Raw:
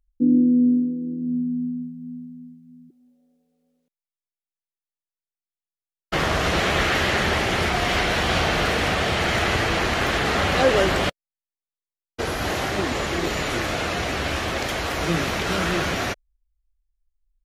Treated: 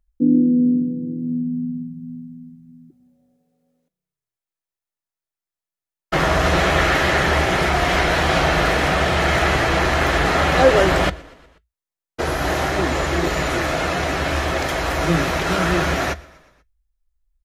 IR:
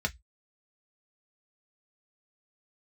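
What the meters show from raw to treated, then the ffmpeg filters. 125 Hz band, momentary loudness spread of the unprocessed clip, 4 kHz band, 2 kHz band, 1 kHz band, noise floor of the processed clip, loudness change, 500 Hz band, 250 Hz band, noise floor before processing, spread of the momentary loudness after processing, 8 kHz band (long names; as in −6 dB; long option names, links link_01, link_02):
+5.0 dB, 10 LU, +0.5 dB, +3.5 dB, +5.0 dB, below −85 dBFS, +3.5 dB, +4.5 dB, +2.0 dB, below −85 dBFS, 10 LU, +1.5 dB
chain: -filter_complex "[0:a]asplit=5[link_01][link_02][link_03][link_04][link_05];[link_02]adelay=121,afreqshift=-32,volume=-23.5dB[link_06];[link_03]adelay=242,afreqshift=-64,volume=-27.7dB[link_07];[link_04]adelay=363,afreqshift=-96,volume=-31.8dB[link_08];[link_05]adelay=484,afreqshift=-128,volume=-36dB[link_09];[link_01][link_06][link_07][link_08][link_09]amix=inputs=5:normalize=0,asplit=2[link_10][link_11];[1:a]atrim=start_sample=2205[link_12];[link_11][link_12]afir=irnorm=-1:irlink=0,volume=-14dB[link_13];[link_10][link_13]amix=inputs=2:normalize=0,volume=3dB"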